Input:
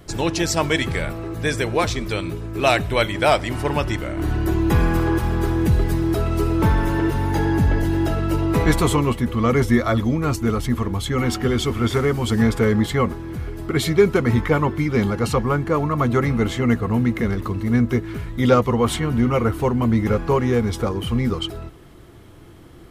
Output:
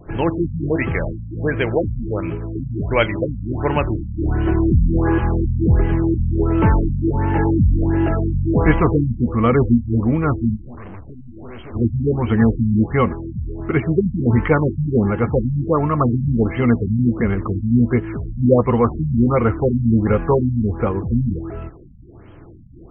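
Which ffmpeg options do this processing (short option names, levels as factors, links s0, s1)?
-filter_complex "[0:a]asplit=3[s0][s1][s2];[s0]afade=t=out:st=10.55:d=0.02[s3];[s1]aeval=exprs='(tanh(70.8*val(0)+0.6)-tanh(0.6))/70.8':c=same,afade=t=in:st=10.55:d=0.02,afade=t=out:st=11.73:d=0.02[s4];[s2]afade=t=in:st=11.73:d=0.02[s5];[s3][s4][s5]amix=inputs=3:normalize=0,afftfilt=real='re*lt(b*sr/1024,240*pow(3300/240,0.5+0.5*sin(2*PI*1.4*pts/sr)))':imag='im*lt(b*sr/1024,240*pow(3300/240,0.5+0.5*sin(2*PI*1.4*pts/sr)))':win_size=1024:overlap=0.75,volume=1.41"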